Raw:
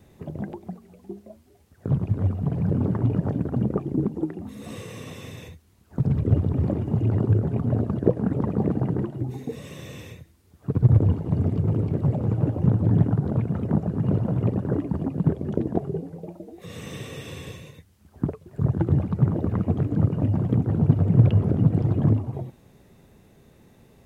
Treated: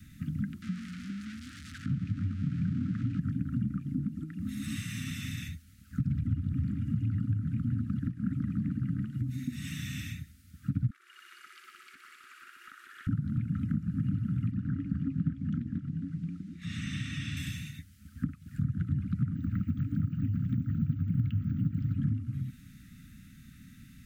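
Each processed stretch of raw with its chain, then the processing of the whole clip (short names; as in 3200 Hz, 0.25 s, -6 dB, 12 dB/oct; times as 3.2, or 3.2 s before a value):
0.62–3.2 zero-crossing step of -37.5 dBFS + HPF 170 Hz 6 dB/oct + air absorption 90 m
10.9–13.07 brick-wall FIR high-pass 360 Hz + thinning echo 61 ms, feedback 83%, high-pass 500 Hz, level -5.5 dB
14.51–17.37 air absorption 79 m + echo 0.268 s -11 dB
19.36–21.96 careless resampling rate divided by 2×, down filtered, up hold + Doppler distortion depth 0.43 ms
whole clip: compressor 4:1, threshold -32 dBFS; Chebyshev band-stop 280–1300 Hz, order 5; gain +4 dB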